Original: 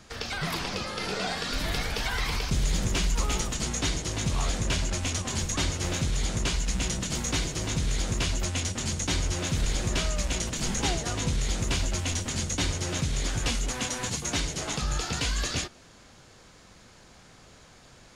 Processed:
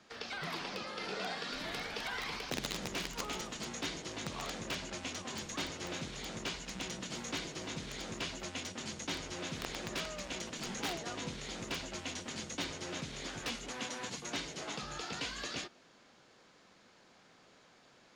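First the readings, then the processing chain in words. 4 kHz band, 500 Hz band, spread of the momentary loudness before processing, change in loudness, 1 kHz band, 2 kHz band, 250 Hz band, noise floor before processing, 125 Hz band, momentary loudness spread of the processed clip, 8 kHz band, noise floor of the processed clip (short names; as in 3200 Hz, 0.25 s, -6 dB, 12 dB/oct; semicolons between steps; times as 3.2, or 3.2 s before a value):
-8.5 dB, -7.5 dB, 2 LU, -11.0 dB, -7.5 dB, -7.5 dB, -10.0 dB, -53 dBFS, -18.5 dB, 3 LU, -13.5 dB, -63 dBFS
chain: wrapped overs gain 18 dB; three-band isolator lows -19 dB, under 170 Hz, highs -12 dB, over 5700 Hz; gain -7.5 dB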